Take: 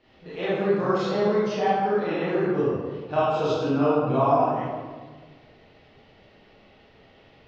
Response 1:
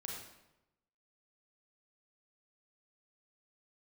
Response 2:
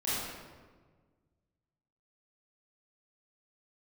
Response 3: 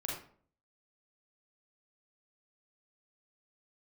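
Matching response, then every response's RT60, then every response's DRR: 2; 0.95 s, 1.5 s, 0.50 s; -2.0 dB, -11.0 dB, -3.5 dB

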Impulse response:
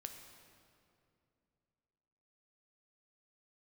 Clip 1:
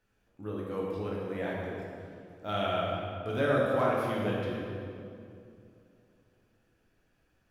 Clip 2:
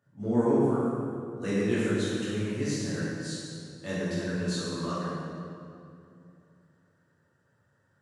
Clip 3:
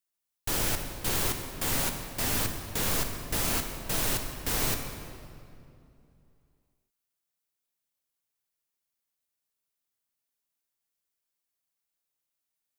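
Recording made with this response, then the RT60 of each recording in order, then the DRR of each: 3; 2.5 s, 2.5 s, 2.6 s; -4.5 dB, -11.0 dB, 4.5 dB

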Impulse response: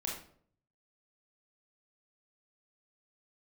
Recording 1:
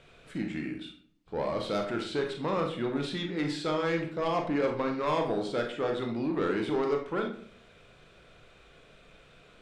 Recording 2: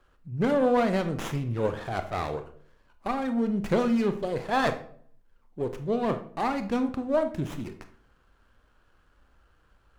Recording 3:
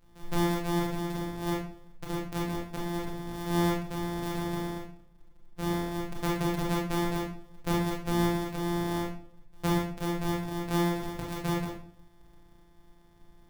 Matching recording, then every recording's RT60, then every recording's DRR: 3; 0.55 s, 0.55 s, 0.55 s; 2.5 dB, 8.0 dB, -2.5 dB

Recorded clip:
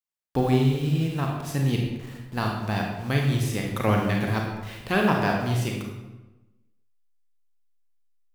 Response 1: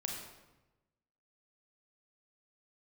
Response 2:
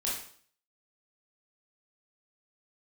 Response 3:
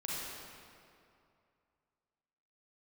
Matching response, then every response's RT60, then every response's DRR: 1; 1.1 s, 0.55 s, 2.5 s; 0.0 dB, -6.0 dB, -6.5 dB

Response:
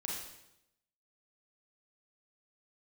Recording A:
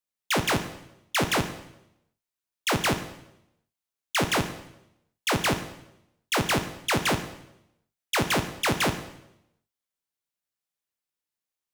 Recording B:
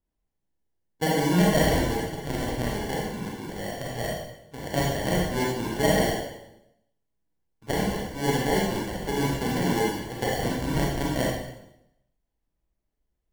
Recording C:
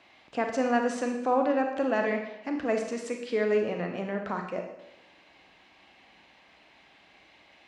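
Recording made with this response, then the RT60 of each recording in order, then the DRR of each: B; 0.85 s, 0.85 s, 0.85 s; 8.5 dB, -3.5 dB, 3.5 dB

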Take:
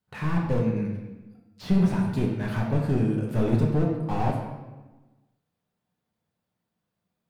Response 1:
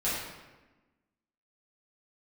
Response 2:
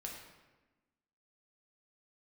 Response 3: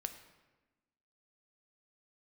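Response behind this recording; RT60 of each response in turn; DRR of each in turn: 2; 1.2 s, 1.2 s, 1.2 s; -11.0 dB, -1.5 dB, 7.5 dB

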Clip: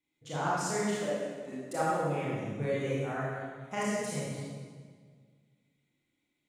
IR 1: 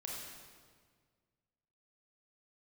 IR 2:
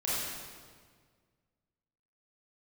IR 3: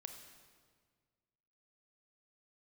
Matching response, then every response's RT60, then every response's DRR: 2; 1.7 s, 1.7 s, 1.7 s; -3.5 dB, -9.0 dB, 5.0 dB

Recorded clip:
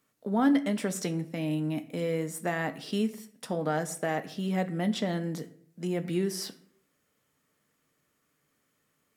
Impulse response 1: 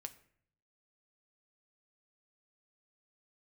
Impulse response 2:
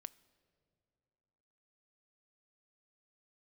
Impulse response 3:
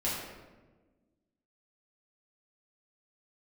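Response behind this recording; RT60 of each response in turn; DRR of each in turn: 1; 0.60 s, 2.7 s, 1.3 s; 8.0 dB, 18.0 dB, -8.5 dB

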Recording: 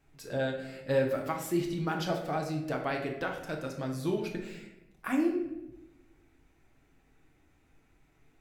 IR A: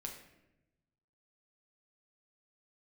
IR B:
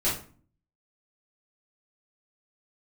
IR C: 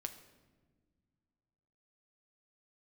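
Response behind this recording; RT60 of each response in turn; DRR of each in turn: A; 0.95 s, 0.40 s, no single decay rate; 1.0 dB, -8.5 dB, 6.5 dB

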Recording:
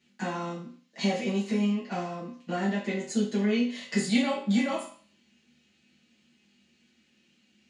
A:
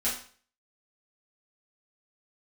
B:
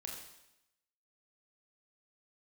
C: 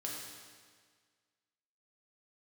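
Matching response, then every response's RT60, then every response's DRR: A; 0.45 s, 0.85 s, 1.7 s; -10.0 dB, -1.0 dB, -3.5 dB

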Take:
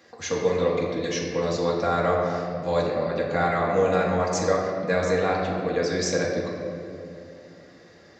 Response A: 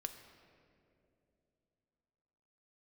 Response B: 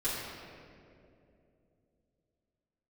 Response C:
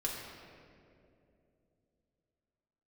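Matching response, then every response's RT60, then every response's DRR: C; 2.8 s, 2.7 s, 2.7 s; 6.5 dB, -12.5 dB, -3.5 dB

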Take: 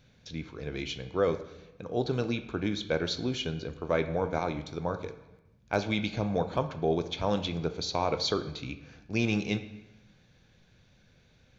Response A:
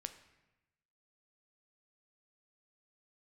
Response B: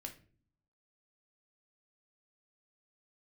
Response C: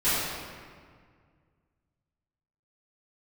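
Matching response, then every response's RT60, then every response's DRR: A; 1.0 s, no single decay rate, 1.9 s; 8.5 dB, 3.0 dB, -16.5 dB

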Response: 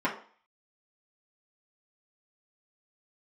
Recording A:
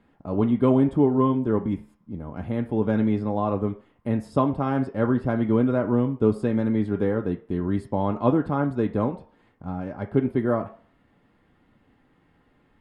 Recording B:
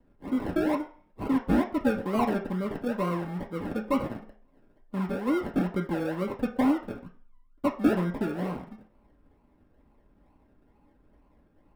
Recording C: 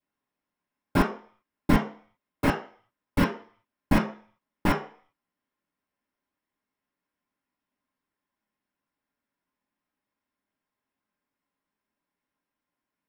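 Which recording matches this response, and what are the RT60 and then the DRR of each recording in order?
C; 0.45 s, 0.45 s, 0.45 s; 3.5 dB, -2.0 dB, -7.5 dB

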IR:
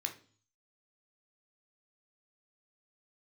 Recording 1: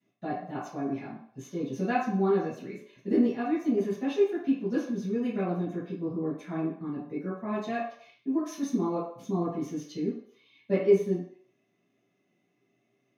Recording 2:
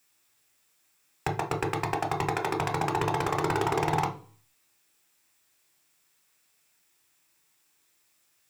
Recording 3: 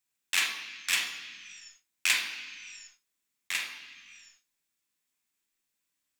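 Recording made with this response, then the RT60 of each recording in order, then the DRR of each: 2; 0.60 s, 0.45 s, 1.5 s; -14.0 dB, 3.5 dB, 1.0 dB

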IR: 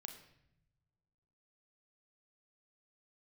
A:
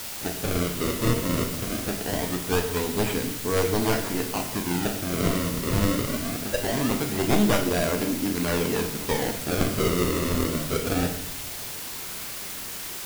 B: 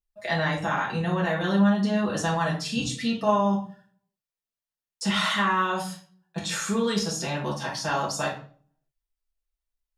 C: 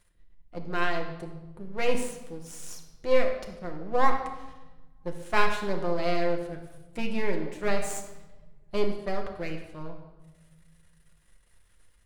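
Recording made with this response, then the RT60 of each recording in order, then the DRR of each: A; no single decay rate, 0.45 s, 1.1 s; 4.5 dB, -5.5 dB, 2.0 dB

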